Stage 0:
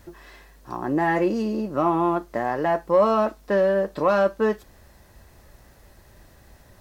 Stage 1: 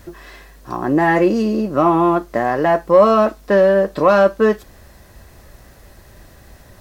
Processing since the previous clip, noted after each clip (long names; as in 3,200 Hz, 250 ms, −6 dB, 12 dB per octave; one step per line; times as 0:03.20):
notch filter 880 Hz, Q 15
level +7.5 dB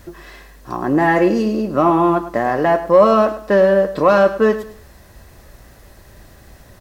repeating echo 104 ms, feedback 28%, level −13.5 dB